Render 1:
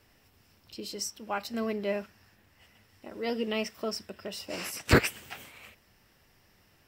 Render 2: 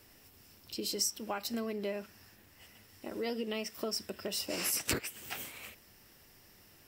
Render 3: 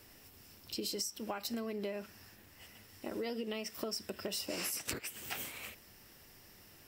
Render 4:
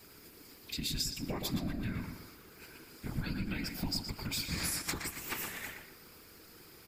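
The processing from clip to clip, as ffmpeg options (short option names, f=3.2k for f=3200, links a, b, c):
-af "equalizer=f=330:w=1.2:g=4,acompressor=threshold=-33dB:ratio=8,highshelf=f=5.3k:g=11"
-af "acompressor=threshold=-36dB:ratio=12,volume=1.5dB"
-filter_complex "[0:a]afreqshift=-450,afftfilt=real='hypot(re,im)*cos(2*PI*random(0))':imag='hypot(re,im)*sin(2*PI*random(1))':win_size=512:overlap=0.75,asplit=2[a][b];[b]adelay=119,lowpass=f=3.5k:p=1,volume=-5dB,asplit=2[c][d];[d]adelay=119,lowpass=f=3.5k:p=1,volume=0.37,asplit=2[e][f];[f]adelay=119,lowpass=f=3.5k:p=1,volume=0.37,asplit=2[g][h];[h]adelay=119,lowpass=f=3.5k:p=1,volume=0.37,asplit=2[i][j];[j]adelay=119,lowpass=f=3.5k:p=1,volume=0.37[k];[a][c][e][g][i][k]amix=inputs=6:normalize=0,volume=8.5dB"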